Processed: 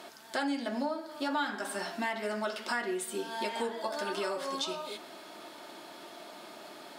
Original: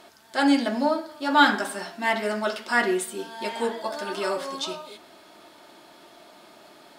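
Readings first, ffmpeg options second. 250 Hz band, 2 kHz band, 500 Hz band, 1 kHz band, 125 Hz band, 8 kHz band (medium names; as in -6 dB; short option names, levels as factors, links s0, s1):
-10.5 dB, -10.5 dB, -7.5 dB, -10.0 dB, no reading, -5.0 dB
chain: -af "highpass=160,acompressor=threshold=0.02:ratio=5,volume=1.33"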